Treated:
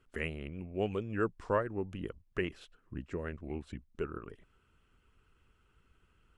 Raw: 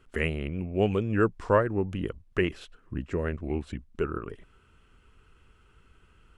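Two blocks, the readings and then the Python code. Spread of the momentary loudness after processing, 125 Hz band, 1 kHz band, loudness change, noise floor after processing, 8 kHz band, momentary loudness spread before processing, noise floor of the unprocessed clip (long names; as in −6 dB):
14 LU, −10.0 dB, −7.5 dB, −8.5 dB, −71 dBFS, can't be measured, 14 LU, −62 dBFS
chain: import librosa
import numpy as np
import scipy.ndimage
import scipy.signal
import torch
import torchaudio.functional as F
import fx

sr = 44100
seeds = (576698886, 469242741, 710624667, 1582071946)

y = fx.hpss(x, sr, part='harmonic', gain_db=-4)
y = y * 10.0 ** (-7.0 / 20.0)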